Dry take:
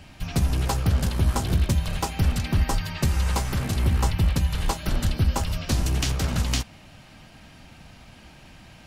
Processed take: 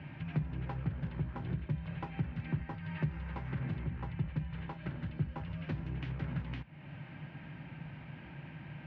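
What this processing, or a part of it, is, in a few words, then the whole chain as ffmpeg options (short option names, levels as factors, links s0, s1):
bass amplifier: -af "acompressor=threshold=0.0141:ratio=4,highpass=f=72:w=0.5412,highpass=f=72:w=1.3066,equalizer=f=83:t=q:w=4:g=-9,equalizer=f=150:t=q:w=4:g=10,equalizer=f=210:t=q:w=4:g=-5,equalizer=f=450:t=q:w=4:g=-5,equalizer=f=700:t=q:w=4:g=-8,equalizer=f=1200:t=q:w=4:g=-7,lowpass=f=2300:w=0.5412,lowpass=f=2300:w=1.3066,volume=1.19"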